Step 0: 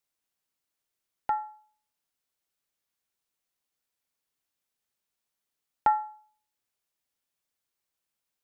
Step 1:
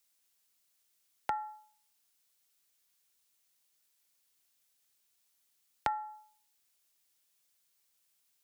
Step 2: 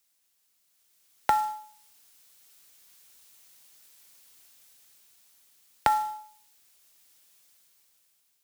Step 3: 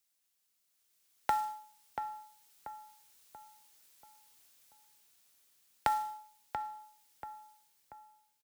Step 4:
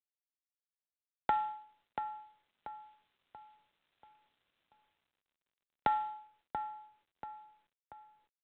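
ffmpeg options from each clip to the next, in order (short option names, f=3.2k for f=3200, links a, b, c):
-filter_complex "[0:a]acrossover=split=200[a][b];[b]acompressor=threshold=-33dB:ratio=5[c];[a][c]amix=inputs=2:normalize=0,highpass=47,highshelf=f=2.3k:g=11.5"
-filter_complex "[0:a]asplit=2[a][b];[b]alimiter=limit=-23dB:level=0:latency=1:release=80,volume=0dB[c];[a][c]amix=inputs=2:normalize=0,dynaudnorm=f=340:g=7:m=15dB,acrusher=bits=4:mode=log:mix=0:aa=0.000001,volume=-3.5dB"
-filter_complex "[0:a]asplit=2[a][b];[b]adelay=685,lowpass=f=1.8k:p=1,volume=-7dB,asplit=2[c][d];[d]adelay=685,lowpass=f=1.8k:p=1,volume=0.45,asplit=2[e][f];[f]adelay=685,lowpass=f=1.8k:p=1,volume=0.45,asplit=2[g][h];[h]adelay=685,lowpass=f=1.8k:p=1,volume=0.45,asplit=2[i][j];[j]adelay=685,lowpass=f=1.8k:p=1,volume=0.45[k];[a][c][e][g][i][k]amix=inputs=6:normalize=0,volume=-7dB"
-ar 8000 -c:a adpcm_g726 -b:a 40k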